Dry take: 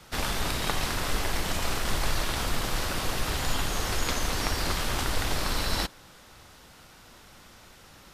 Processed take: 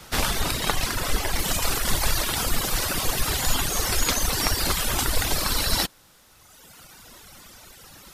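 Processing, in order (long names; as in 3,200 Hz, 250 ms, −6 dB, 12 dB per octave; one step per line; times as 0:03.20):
reverb reduction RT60 1.8 s
high-shelf EQ 6,800 Hz +5.5 dB, from 0:01.39 +11.5 dB
level +6 dB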